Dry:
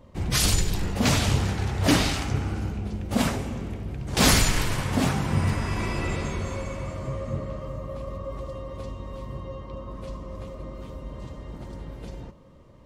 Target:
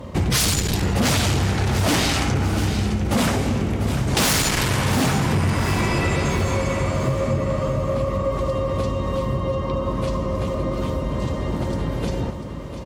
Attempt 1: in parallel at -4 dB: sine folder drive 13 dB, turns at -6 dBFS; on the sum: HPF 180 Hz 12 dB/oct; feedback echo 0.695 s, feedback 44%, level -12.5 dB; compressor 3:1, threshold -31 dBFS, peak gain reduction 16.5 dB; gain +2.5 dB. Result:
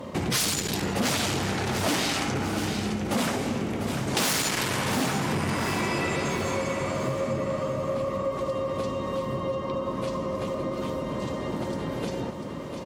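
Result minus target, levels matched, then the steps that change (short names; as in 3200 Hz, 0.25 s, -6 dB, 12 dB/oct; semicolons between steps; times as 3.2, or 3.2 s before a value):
compressor: peak gain reduction +5.5 dB; 125 Hz band -5.0 dB
change: HPF 61 Hz 12 dB/oct; change: compressor 3:1, threshold -22.5 dBFS, peak gain reduction 11 dB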